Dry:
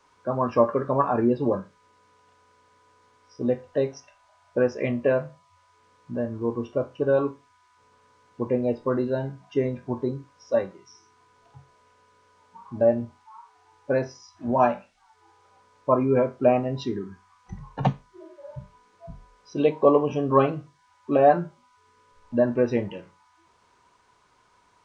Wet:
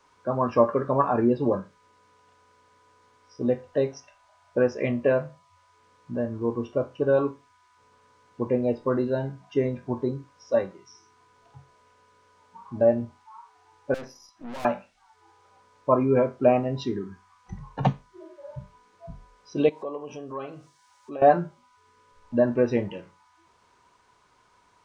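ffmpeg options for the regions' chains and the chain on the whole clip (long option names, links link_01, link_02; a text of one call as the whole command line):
ffmpeg -i in.wav -filter_complex "[0:a]asettb=1/sr,asplit=3[link_01][link_02][link_03];[link_01]atrim=end=13.944[link_04];[link_02]atrim=start=13.94:end=14.65,asetpts=PTS-STARTPTS,afade=type=in:duration=0.004:curve=qsin,afade=type=out:start_time=0.706:duration=0.004:curve=qsin,highpass=frequency=130:width=0.5412,highpass=frequency=130:width=1.3066,aecho=1:1:3.7:0.37,atrim=end_sample=31311,aeval=exprs='(tanh(63.1*val(0)+0.7)-tanh(0.7))/63.1':channel_layout=same[link_05];[link_03]atrim=start=14.646[link_06];[link_04][link_05]acrossfade=duration=0.004:curve1=hsin:curve2=qsin[link_07];[link_07][link_06]acrossfade=duration=0.004:curve1=qsin:curve2=hsin,asettb=1/sr,asplit=3[link_08][link_09][link_10];[link_08]atrim=end=19.694[link_11];[link_09]atrim=start=19.69:end=21.22,asetpts=PTS-STARTPTS,afade=type=in:duration=0.004:curve=qsin,afade=type=out:start_time=1.526:duration=0.004:curve=qsin,bass=frequency=250:gain=-8,treble=frequency=4000:gain=9,acompressor=threshold=-43dB:ratio=2:attack=3.2:release=140:knee=1:detection=peak[link_12];[link_10]atrim=start=21.216[link_13];[link_11][link_12]acrossfade=duration=0.004:curve1=hsin:curve2=qsin[link_14];[link_14][link_13]acrossfade=duration=0.004:curve1=qsin:curve2=hsin" out.wav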